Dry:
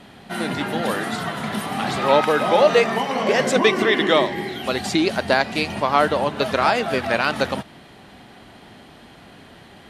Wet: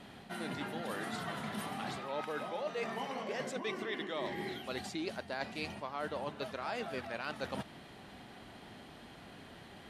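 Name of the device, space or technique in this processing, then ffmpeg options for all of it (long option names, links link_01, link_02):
compression on the reversed sound: -af "areverse,acompressor=threshold=-29dB:ratio=6,areverse,volume=-7.5dB"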